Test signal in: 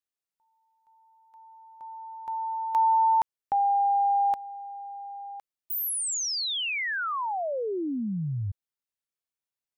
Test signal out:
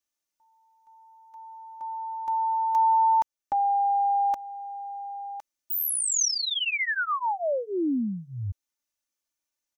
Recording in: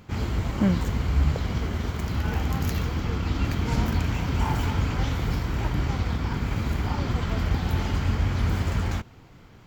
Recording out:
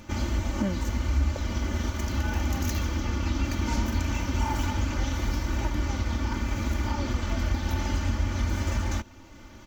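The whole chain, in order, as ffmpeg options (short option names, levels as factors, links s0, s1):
-af "equalizer=f=6100:t=o:w=0.32:g=9,aecho=1:1:3.4:0.95,acompressor=threshold=0.0562:ratio=2:attack=0.22:release=769:knee=6:detection=rms,volume=1.19"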